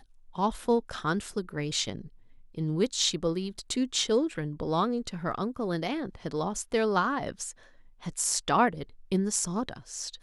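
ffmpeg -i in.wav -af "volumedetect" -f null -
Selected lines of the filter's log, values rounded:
mean_volume: -30.3 dB
max_volume: -10.2 dB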